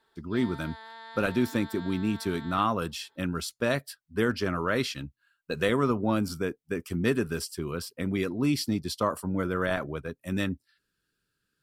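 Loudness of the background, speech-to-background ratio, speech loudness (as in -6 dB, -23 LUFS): -45.5 LUFS, 16.0 dB, -29.5 LUFS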